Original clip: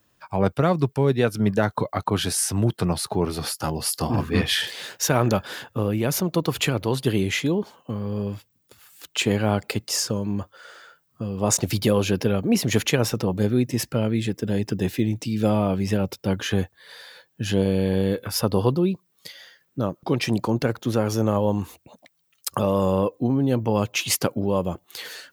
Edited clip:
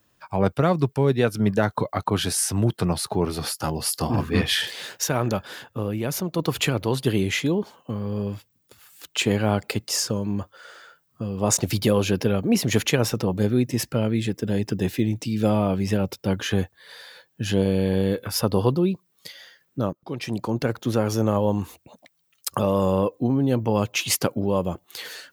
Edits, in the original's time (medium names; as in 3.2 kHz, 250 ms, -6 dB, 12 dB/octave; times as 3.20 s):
5.04–6.39 s: gain -3.5 dB
19.93–20.79 s: fade in, from -15.5 dB